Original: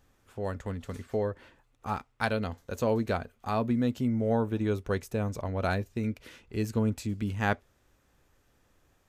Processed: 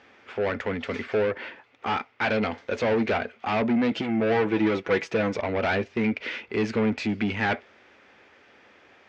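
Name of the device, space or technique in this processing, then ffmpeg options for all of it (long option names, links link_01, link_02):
overdrive pedal into a guitar cabinet: -filter_complex "[0:a]asplit=2[link_01][link_02];[link_02]highpass=frequency=720:poles=1,volume=30dB,asoftclip=type=tanh:threshold=-11dB[link_03];[link_01][link_03]amix=inputs=2:normalize=0,lowpass=frequency=5700:poles=1,volume=-6dB,highpass=83,equalizer=frequency=140:width_type=q:width=4:gain=-9,equalizer=frequency=220:width_type=q:width=4:gain=4,equalizer=frequency=410:width_type=q:width=4:gain=3,equalizer=frequency=1100:width_type=q:width=4:gain=-4,equalizer=frequency=2200:width_type=q:width=4:gain=6,equalizer=frequency=4000:width_type=q:width=4:gain=-5,lowpass=frequency=4500:width=0.5412,lowpass=frequency=4500:width=1.3066,asettb=1/sr,asplit=3[link_04][link_05][link_06];[link_04]atrim=end=3.914[link_07];[link_05]atrim=start=3.91:end=5.35,asetpts=PTS-STARTPTS,afade=type=in:duration=0.004:curve=qsin,afade=type=out:start_time=1.436:duration=0.004:curve=qsin,aecho=1:1:6.1:0.69,atrim=end_sample=63504[link_08];[link_06]atrim=start=5.346[link_09];[link_07][link_08]acrossfade=duration=0.004:curve1=hsin:curve2=qsin[link_10];[link_10][link_09]acrossfade=duration=0.004:curve1=qsin:curve2=hsin,volume=-5.5dB"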